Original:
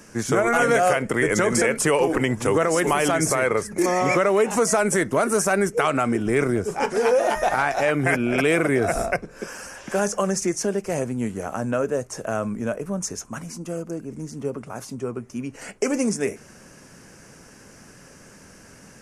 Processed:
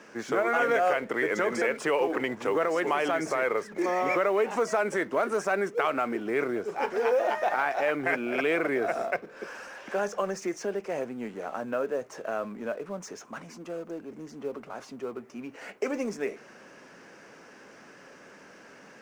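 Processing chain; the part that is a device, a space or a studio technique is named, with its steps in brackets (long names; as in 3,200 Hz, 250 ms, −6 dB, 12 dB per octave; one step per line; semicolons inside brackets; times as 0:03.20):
phone line with mismatched companding (band-pass filter 320–3,400 Hz; mu-law and A-law mismatch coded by mu)
level −5.5 dB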